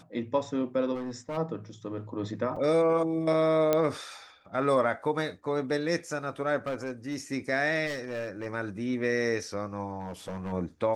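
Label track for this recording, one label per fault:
0.940000	1.380000	clipped -31 dBFS
2.560000	2.560000	dropout 4.7 ms
3.730000	3.730000	pop -11 dBFS
6.660000	7.160000	clipped -27.5 dBFS
7.860000	8.460000	clipped -29.5 dBFS
9.990000	10.530000	clipped -31 dBFS

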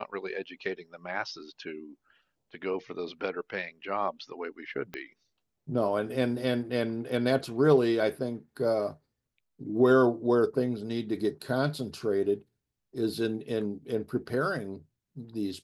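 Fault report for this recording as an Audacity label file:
4.940000	4.940000	pop -22 dBFS

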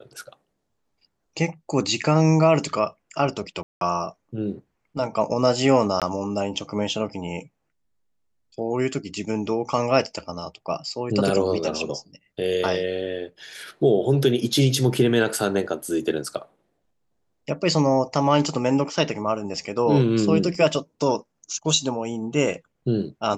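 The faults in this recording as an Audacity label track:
3.630000	3.810000	dropout 182 ms
6.000000	6.020000	dropout 17 ms
20.550000	20.550000	dropout 2 ms

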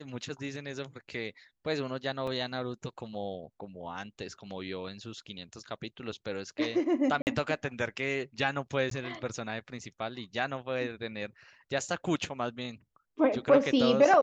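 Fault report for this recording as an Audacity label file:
2.270000	2.270000	dropout 4.2 ms
7.220000	7.270000	dropout 49 ms
8.900000	8.910000	dropout 13 ms

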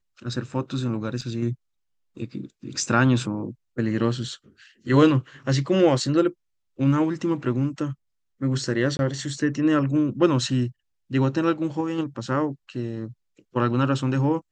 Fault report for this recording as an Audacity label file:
1.210000	1.220000	dropout 5.8 ms
8.970000	8.990000	dropout 21 ms

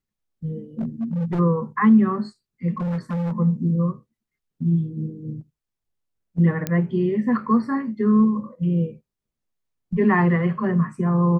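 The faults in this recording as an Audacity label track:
0.790000	1.400000	clipped -21 dBFS
2.780000	3.330000	clipped -22.5 dBFS
6.670000	6.670000	pop -10 dBFS

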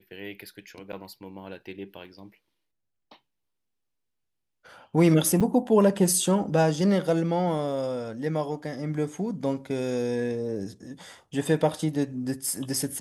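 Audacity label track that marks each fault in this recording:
0.920000	0.930000	dropout 8.7 ms
5.400000	5.410000	dropout 6.7 ms

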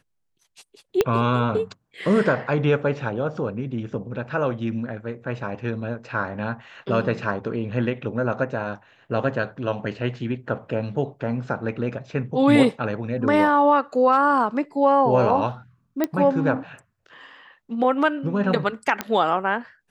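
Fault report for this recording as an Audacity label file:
1.010000	1.010000	pop -6 dBFS
16.040000	16.040000	pop -9 dBFS
19.010000	19.010000	pop -9 dBFS

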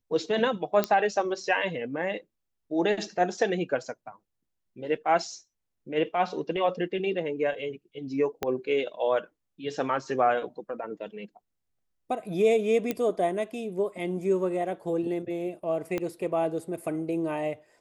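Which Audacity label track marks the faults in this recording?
0.840000	0.840000	pop -10 dBFS
8.430000	8.430000	pop -13 dBFS
12.910000	12.910000	pop -14 dBFS
15.980000	15.980000	pop -17 dBFS

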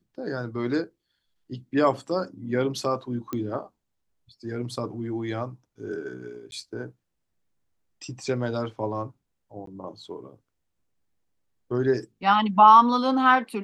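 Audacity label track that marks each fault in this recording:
3.330000	3.330000	pop -17 dBFS
6.510000	6.520000	dropout
9.660000	9.670000	dropout 13 ms

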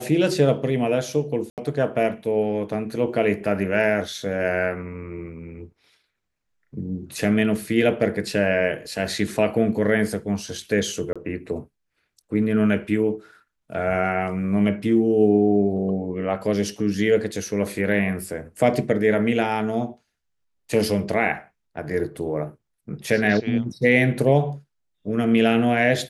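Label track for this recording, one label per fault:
1.500000	1.580000	dropout 78 ms
11.130000	11.160000	dropout 26 ms

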